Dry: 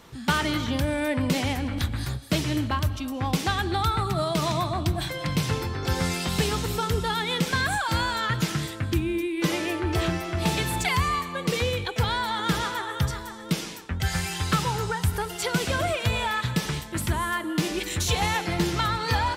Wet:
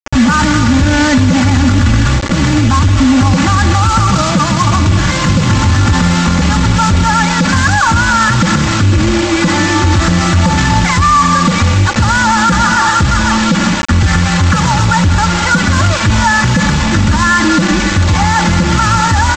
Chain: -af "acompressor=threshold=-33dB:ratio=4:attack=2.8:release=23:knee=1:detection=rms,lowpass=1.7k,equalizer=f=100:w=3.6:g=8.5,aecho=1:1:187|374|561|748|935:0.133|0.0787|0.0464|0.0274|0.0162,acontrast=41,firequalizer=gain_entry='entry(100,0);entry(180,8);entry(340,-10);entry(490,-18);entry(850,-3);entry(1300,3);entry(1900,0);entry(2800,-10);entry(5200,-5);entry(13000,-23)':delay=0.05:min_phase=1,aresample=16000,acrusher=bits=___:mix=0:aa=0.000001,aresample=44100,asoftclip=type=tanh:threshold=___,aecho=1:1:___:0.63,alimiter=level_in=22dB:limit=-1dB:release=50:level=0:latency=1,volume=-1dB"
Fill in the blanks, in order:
5, -21.5dB, 3.5